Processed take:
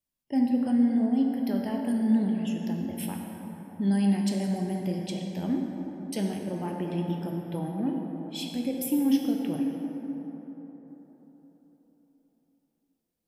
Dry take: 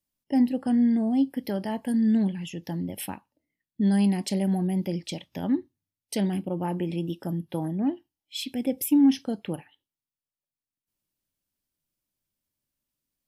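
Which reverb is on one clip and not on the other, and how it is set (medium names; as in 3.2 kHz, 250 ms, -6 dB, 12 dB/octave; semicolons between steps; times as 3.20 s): plate-style reverb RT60 4.3 s, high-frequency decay 0.4×, DRR 0.5 dB; trim -4.5 dB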